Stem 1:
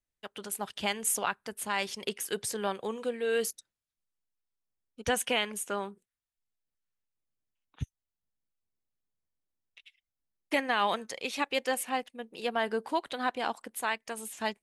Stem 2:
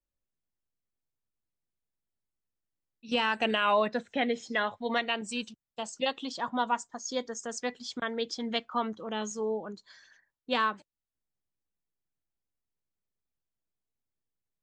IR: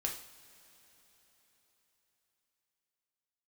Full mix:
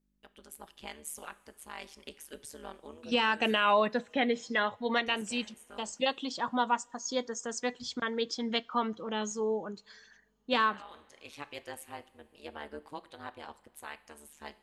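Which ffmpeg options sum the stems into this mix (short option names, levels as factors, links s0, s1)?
-filter_complex "[0:a]aeval=exprs='val(0)+0.000708*(sin(2*PI*50*n/s)+sin(2*PI*2*50*n/s)/2+sin(2*PI*3*50*n/s)/3+sin(2*PI*4*50*n/s)/4+sin(2*PI*5*50*n/s)/5)':c=same,tremolo=f=150:d=1,volume=0.282,asplit=2[s0][s1];[s1]volume=0.316[s2];[1:a]volume=1,asplit=3[s3][s4][s5];[s4]volume=0.0708[s6];[s5]apad=whole_len=645113[s7];[s0][s7]sidechaincompress=threshold=0.00447:ratio=8:attack=16:release=411[s8];[2:a]atrim=start_sample=2205[s9];[s2][s6]amix=inputs=2:normalize=0[s10];[s10][s9]afir=irnorm=-1:irlink=0[s11];[s8][s3][s11]amix=inputs=3:normalize=0,bandreject=f=680:w=16"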